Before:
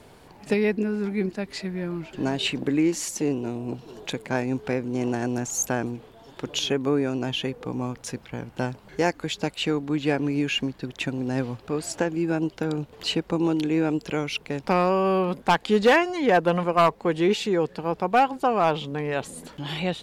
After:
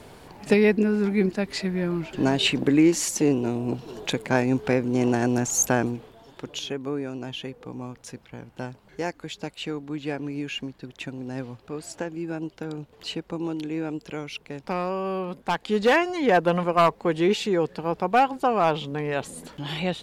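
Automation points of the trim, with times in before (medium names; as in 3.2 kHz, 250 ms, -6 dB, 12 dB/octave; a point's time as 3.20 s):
5.81 s +4 dB
6.63 s -6.5 dB
15.41 s -6.5 dB
16.08 s 0 dB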